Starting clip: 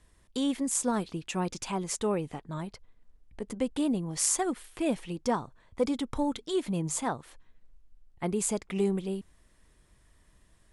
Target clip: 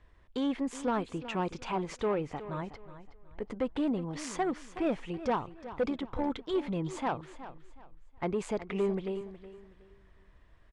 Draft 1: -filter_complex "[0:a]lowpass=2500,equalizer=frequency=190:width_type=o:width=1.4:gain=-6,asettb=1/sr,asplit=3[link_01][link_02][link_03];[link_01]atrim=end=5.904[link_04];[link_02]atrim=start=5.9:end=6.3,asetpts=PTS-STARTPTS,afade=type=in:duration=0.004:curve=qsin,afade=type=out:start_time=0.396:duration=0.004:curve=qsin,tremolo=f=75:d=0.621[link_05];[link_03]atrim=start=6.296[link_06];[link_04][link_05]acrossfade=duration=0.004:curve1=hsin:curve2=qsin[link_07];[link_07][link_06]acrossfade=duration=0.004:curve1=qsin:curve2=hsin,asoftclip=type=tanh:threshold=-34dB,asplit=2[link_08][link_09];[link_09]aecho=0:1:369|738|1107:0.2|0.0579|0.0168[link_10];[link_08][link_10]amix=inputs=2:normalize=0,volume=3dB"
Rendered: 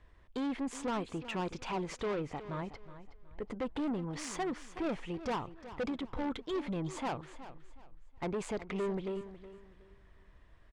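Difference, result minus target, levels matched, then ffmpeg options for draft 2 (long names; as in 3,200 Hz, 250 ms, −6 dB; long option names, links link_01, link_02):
soft clipping: distortion +8 dB
-filter_complex "[0:a]lowpass=2500,equalizer=frequency=190:width_type=o:width=1.4:gain=-6,asettb=1/sr,asplit=3[link_01][link_02][link_03];[link_01]atrim=end=5.904[link_04];[link_02]atrim=start=5.9:end=6.3,asetpts=PTS-STARTPTS,afade=type=in:duration=0.004:curve=qsin,afade=type=out:start_time=0.396:duration=0.004:curve=qsin,tremolo=f=75:d=0.621[link_05];[link_03]atrim=start=6.296[link_06];[link_04][link_05]acrossfade=duration=0.004:curve1=hsin:curve2=qsin[link_07];[link_07][link_06]acrossfade=duration=0.004:curve1=qsin:curve2=hsin,asoftclip=type=tanh:threshold=-25.5dB,asplit=2[link_08][link_09];[link_09]aecho=0:1:369|738|1107:0.2|0.0579|0.0168[link_10];[link_08][link_10]amix=inputs=2:normalize=0,volume=3dB"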